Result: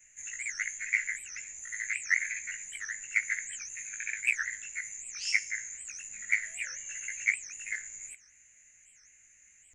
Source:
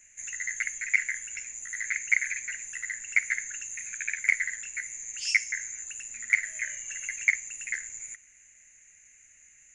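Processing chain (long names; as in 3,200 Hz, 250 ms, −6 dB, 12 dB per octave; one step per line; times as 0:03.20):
every overlapping window played backwards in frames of 37 ms
wow of a warped record 78 rpm, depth 250 cents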